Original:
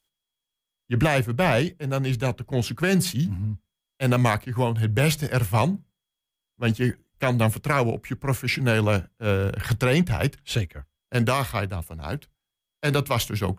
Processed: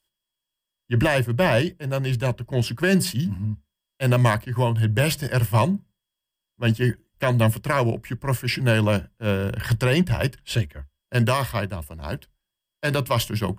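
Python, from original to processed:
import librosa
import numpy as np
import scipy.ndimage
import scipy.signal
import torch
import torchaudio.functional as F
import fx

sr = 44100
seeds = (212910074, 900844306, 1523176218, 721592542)

y = fx.ripple_eq(x, sr, per_octave=1.3, db=8)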